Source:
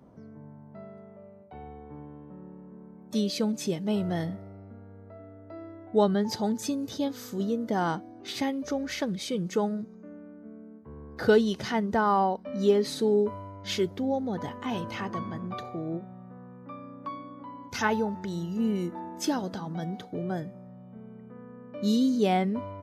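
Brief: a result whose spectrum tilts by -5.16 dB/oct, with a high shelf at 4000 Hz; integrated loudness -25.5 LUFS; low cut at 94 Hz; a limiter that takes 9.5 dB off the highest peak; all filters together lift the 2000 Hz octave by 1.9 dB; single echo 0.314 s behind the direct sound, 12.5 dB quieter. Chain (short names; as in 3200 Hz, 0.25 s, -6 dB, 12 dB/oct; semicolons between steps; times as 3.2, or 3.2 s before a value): HPF 94 Hz; bell 2000 Hz +4 dB; high shelf 4000 Hz -6.5 dB; limiter -20 dBFS; echo 0.314 s -12.5 dB; gain +5.5 dB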